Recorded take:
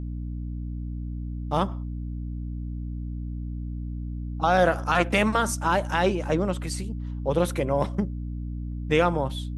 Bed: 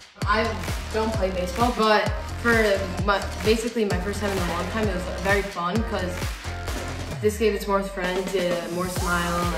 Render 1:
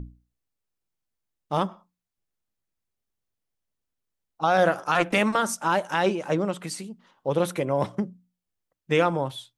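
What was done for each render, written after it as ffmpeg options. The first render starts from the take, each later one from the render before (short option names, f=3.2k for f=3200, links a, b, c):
-af "bandreject=f=60:t=h:w=6,bandreject=f=120:t=h:w=6,bandreject=f=180:t=h:w=6,bandreject=f=240:t=h:w=6,bandreject=f=300:t=h:w=6"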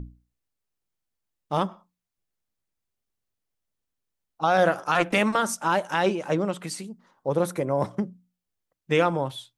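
-filter_complex "[0:a]asettb=1/sr,asplit=3[a][b][c];[a]atrim=end=6.864[d];[b]atrim=start=6.86:end=7.91,asetpts=PTS-STARTPTS,afade=t=in:d=0.004:c=qsin,afade=t=out:st=1.046:d=0.004:c=qsin,equalizer=f=3k:w=1.8:g=-10.5[e];[c]atrim=start=7.906[f];[d][e]acrossfade=d=0.004:c1=hsin:c2=qsin[g];[g][f]acrossfade=d=0.004:c1=qsin:c2=hsin"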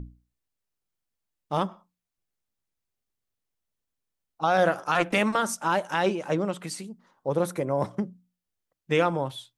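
-af "volume=-1.5dB"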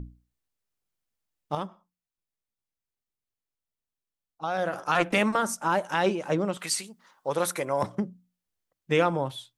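-filter_complex "[0:a]asettb=1/sr,asplit=3[a][b][c];[a]atrim=end=5.264[d];[b]atrim=start=5.26:end=5.84,asetpts=PTS-STARTPTS,afade=t=in:d=0.004:c=qsin,afade=t=out:st=0.576:d=0.004:c=qsin,equalizer=f=3.4k:t=o:w=1.2:g=-4.5[e];[c]atrim=start=5.836[f];[d][e]acrossfade=d=0.004:c1=hsin:c2=qsin[g];[g][f]acrossfade=d=0.004:c1=qsin:c2=hsin,asettb=1/sr,asplit=3[h][i][j];[h]atrim=end=6.574[k];[i]atrim=start=6.57:end=7.83,asetpts=PTS-STARTPTS,afade=t=in:d=0.004:c=qsin,afade=t=out:st=1.256:d=0.004:c=qsin,tiltshelf=f=640:g=-9[l];[j]atrim=start=7.826[m];[k][l]acrossfade=d=0.004:c1=hsin:c2=qsin[n];[n][m]acrossfade=d=0.004:c1=qsin:c2=hsin,asplit=3[o][p][q];[o]atrim=end=1.552[r];[p]atrim=start=1.548:end=4.732,asetpts=PTS-STARTPTS,volume=-7dB[s];[q]atrim=start=4.728[t];[r][s]acrossfade=d=0.004:c1=hsin:c2=hsin[u];[u][t]acrossfade=d=0.004:c1=hsin:c2=hsin"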